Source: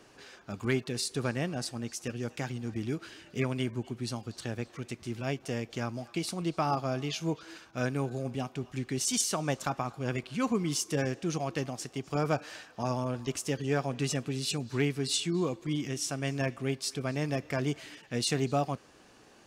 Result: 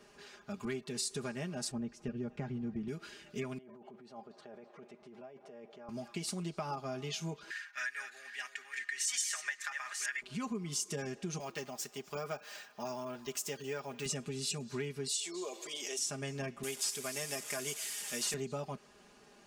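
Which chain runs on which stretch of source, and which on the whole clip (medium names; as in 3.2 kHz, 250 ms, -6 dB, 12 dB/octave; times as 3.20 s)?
1.71–2.88 s: low-pass 2.4 kHz 6 dB/octave + tilt EQ -2.5 dB/octave
3.58–5.89 s: compressor with a negative ratio -40 dBFS + band-pass filter 660 Hz, Q 1.5
7.50–10.22 s: chunks repeated in reverse 426 ms, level -9 dB + resonant high-pass 1.8 kHz, resonance Q 11
11.40–14.06 s: bass shelf 290 Hz -11.5 dB + careless resampling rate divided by 2×, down none, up hold
15.08–15.99 s: high-pass 500 Hz 24 dB/octave + peaking EQ 1.4 kHz -11.5 dB 1.8 oct + level flattener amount 50%
16.63–18.34 s: one-bit delta coder 64 kbps, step -41.5 dBFS + RIAA curve recording + band-stop 4.1 kHz, Q 20
whole clip: comb 4.9 ms, depth 83%; compression 4:1, threshold -31 dBFS; dynamic bell 7.5 kHz, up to +6 dB, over -54 dBFS, Q 1.5; trim -5 dB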